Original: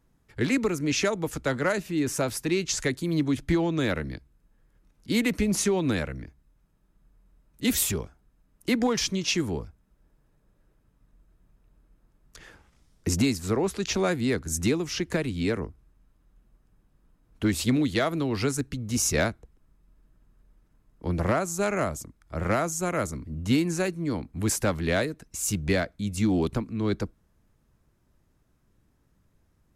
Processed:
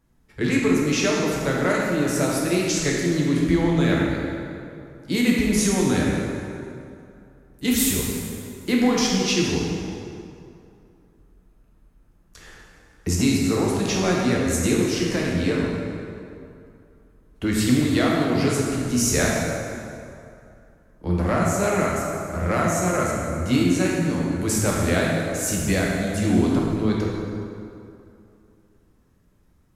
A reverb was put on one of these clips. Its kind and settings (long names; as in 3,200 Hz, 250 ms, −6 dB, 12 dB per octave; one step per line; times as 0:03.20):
dense smooth reverb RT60 2.6 s, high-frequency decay 0.65×, DRR −3.5 dB